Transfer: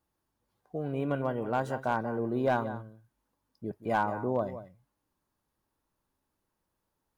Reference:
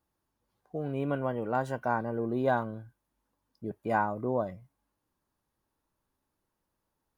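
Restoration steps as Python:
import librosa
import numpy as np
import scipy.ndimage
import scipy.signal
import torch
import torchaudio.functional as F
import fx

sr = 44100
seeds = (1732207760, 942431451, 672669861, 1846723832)

y = fx.fix_declip(x, sr, threshold_db=-18.5)
y = fx.fix_echo_inverse(y, sr, delay_ms=179, level_db=-13.0)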